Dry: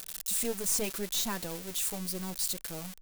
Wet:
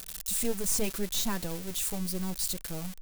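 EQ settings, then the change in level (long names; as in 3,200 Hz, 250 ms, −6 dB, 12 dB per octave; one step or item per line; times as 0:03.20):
low-shelf EQ 160 Hz +11 dB
0.0 dB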